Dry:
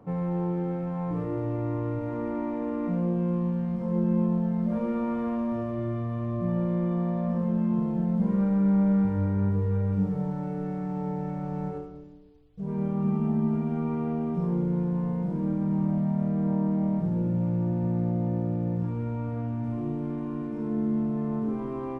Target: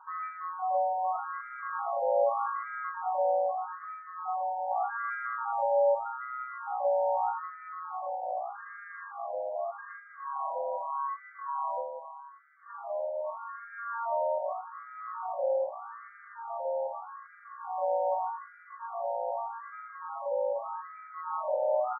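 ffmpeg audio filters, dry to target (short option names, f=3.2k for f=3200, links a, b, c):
-filter_complex "[0:a]aecho=1:1:5.7:0.75,alimiter=limit=-18.5dB:level=0:latency=1:release=351,asplit=2[a][b];[b]adelay=874.6,volume=-11dB,highshelf=f=4k:g=-19.7[c];[a][c]amix=inputs=2:normalize=0,highpass=f=180:t=q:w=0.5412,highpass=f=180:t=q:w=1.307,lowpass=f=2.1k:t=q:w=0.5176,lowpass=f=2.1k:t=q:w=0.7071,lowpass=f=2.1k:t=q:w=1.932,afreqshift=220,afftfilt=real='re*between(b*sr/1024,680*pow(1700/680,0.5+0.5*sin(2*PI*0.82*pts/sr))/1.41,680*pow(1700/680,0.5+0.5*sin(2*PI*0.82*pts/sr))*1.41)':imag='im*between(b*sr/1024,680*pow(1700/680,0.5+0.5*sin(2*PI*0.82*pts/sr))/1.41,680*pow(1700/680,0.5+0.5*sin(2*PI*0.82*pts/sr))*1.41)':win_size=1024:overlap=0.75,volume=6dB"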